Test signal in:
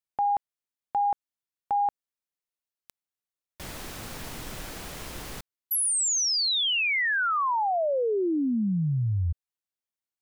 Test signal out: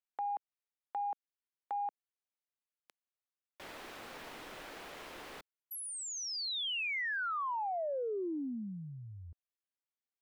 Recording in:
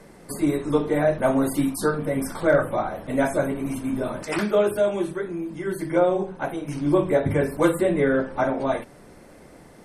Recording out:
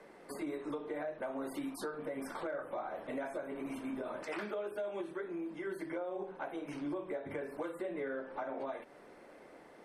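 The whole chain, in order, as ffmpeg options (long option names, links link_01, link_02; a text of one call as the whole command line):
ffmpeg -i in.wav -filter_complex "[0:a]acrossover=split=280 3800:gain=0.126 1 0.251[link_01][link_02][link_03];[link_01][link_02][link_03]amix=inputs=3:normalize=0,acompressor=threshold=-28dB:ratio=16:attack=1.3:release=198:knee=6:detection=rms,aeval=exprs='0.0708*(cos(1*acos(clip(val(0)/0.0708,-1,1)))-cos(1*PI/2))+0.00158*(cos(3*acos(clip(val(0)/0.0708,-1,1)))-cos(3*PI/2))':channel_layout=same,volume=-4.5dB" out.wav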